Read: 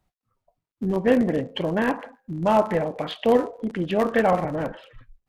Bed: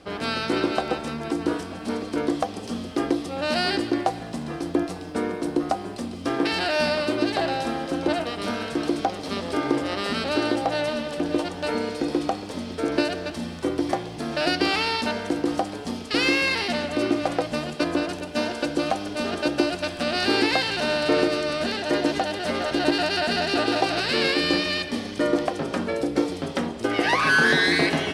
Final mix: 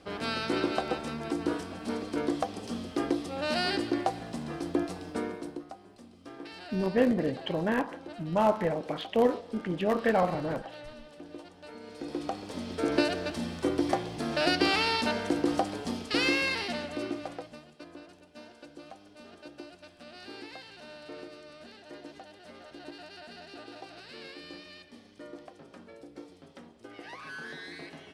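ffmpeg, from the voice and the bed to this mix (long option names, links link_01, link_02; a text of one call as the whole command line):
ffmpeg -i stem1.wav -i stem2.wav -filter_complex "[0:a]adelay=5900,volume=-5.5dB[link_01];[1:a]volume=12dB,afade=type=out:start_time=5.1:duration=0.55:silence=0.177828,afade=type=in:start_time=11.8:duration=1.12:silence=0.133352,afade=type=out:start_time=15.8:duration=1.84:silence=0.0944061[link_02];[link_01][link_02]amix=inputs=2:normalize=0" out.wav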